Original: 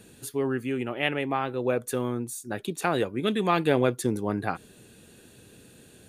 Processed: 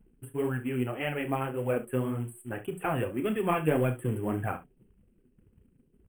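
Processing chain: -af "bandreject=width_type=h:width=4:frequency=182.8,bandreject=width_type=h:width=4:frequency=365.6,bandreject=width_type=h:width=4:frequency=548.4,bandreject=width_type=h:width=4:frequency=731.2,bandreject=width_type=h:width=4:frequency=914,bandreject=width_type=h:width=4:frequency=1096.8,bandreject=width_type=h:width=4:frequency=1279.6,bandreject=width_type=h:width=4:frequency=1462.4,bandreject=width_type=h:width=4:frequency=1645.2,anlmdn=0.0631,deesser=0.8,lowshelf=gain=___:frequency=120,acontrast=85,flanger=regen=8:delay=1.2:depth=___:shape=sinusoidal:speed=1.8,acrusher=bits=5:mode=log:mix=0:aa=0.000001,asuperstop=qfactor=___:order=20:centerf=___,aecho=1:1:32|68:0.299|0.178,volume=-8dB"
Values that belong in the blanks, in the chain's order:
10.5, 6.7, 1.1, 5100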